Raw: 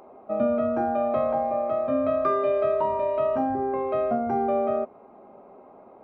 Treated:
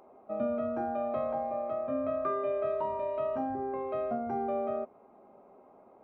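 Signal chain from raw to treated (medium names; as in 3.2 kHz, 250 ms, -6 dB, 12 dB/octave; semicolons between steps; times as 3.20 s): 1.73–2.66 s: low-pass 3 kHz 12 dB/octave; trim -8 dB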